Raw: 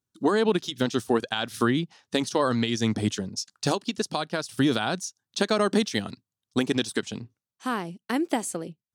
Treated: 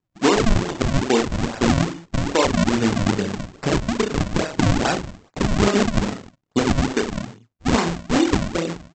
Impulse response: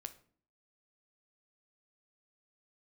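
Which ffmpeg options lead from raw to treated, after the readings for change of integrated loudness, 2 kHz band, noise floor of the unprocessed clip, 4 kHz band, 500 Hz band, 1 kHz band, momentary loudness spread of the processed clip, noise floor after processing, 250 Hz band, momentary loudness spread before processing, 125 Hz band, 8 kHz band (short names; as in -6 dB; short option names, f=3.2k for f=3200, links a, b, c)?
+5.5 dB, +5.5 dB, under -85 dBFS, +2.5 dB, +4.5 dB, +5.5 dB, 9 LU, -72 dBFS, +6.0 dB, 9 LU, +10.0 dB, +4.5 dB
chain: -af "aemphasis=mode=reproduction:type=75fm,aecho=1:1:30|64.5|104.2|149.8|202.3:0.631|0.398|0.251|0.158|0.1,alimiter=limit=-15dB:level=0:latency=1:release=386,lowshelf=f=160:g=-6,aresample=16000,acrusher=samples=22:mix=1:aa=0.000001:lfo=1:lforange=35.2:lforate=2.4,aresample=44100,volume=9dB"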